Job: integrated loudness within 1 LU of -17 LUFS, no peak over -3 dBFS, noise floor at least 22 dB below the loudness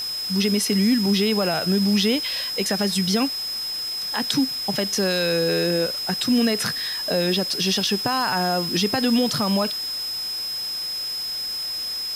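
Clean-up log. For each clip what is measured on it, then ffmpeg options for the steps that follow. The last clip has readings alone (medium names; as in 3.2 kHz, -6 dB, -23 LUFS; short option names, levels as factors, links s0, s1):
steady tone 5.1 kHz; tone level -26 dBFS; noise floor -29 dBFS; noise floor target -44 dBFS; loudness -22.0 LUFS; peak level -7.5 dBFS; loudness target -17.0 LUFS
-> -af "bandreject=f=5100:w=30"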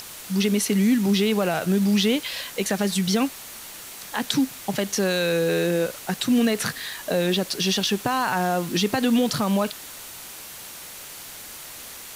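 steady tone not found; noise floor -40 dBFS; noise floor target -45 dBFS
-> -af "afftdn=nr=6:nf=-40"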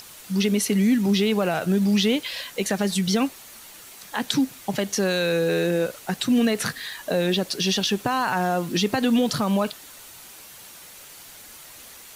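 noise floor -45 dBFS; loudness -23.0 LUFS; peak level -8.0 dBFS; loudness target -17.0 LUFS
-> -af "volume=2,alimiter=limit=0.708:level=0:latency=1"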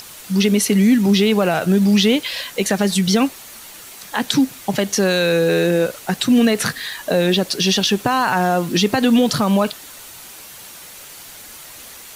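loudness -17.0 LUFS; peak level -3.0 dBFS; noise floor -39 dBFS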